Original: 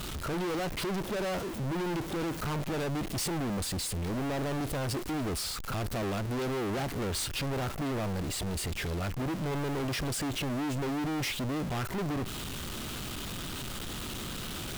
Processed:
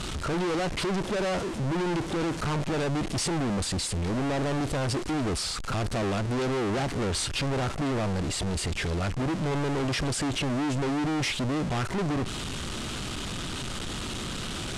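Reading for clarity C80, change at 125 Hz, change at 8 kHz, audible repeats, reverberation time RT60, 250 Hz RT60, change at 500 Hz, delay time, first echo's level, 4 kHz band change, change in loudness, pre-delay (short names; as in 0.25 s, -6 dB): none, +4.5 dB, +3.5 dB, none, none, none, +4.5 dB, none, none, +4.5 dB, +4.5 dB, none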